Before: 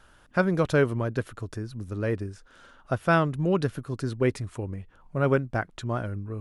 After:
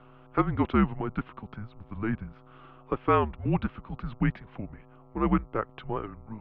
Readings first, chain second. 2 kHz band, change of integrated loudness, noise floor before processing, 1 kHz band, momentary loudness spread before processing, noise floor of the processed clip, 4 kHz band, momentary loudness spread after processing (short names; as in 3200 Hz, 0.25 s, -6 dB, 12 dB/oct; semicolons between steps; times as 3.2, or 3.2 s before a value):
-8.0 dB, -1.5 dB, -57 dBFS, +1.0 dB, 13 LU, -54 dBFS, -6.5 dB, 17 LU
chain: buzz 120 Hz, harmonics 13, -45 dBFS -8 dB/oct; mistuned SSB -220 Hz 270–3300 Hz